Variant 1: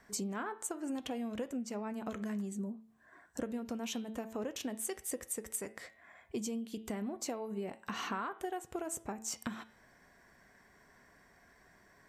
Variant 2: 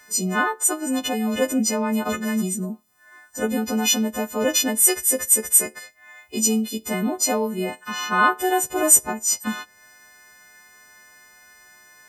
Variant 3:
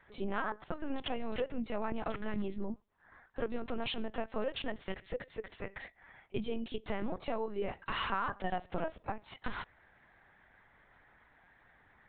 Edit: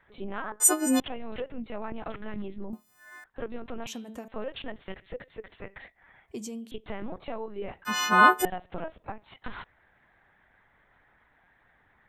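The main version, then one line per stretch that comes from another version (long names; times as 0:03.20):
3
0:00.60–0:01.00: punch in from 2
0:02.73–0:03.24: punch in from 2
0:03.87–0:04.28: punch in from 1
0:06.28–0:06.71: punch in from 1
0:07.85–0:08.45: punch in from 2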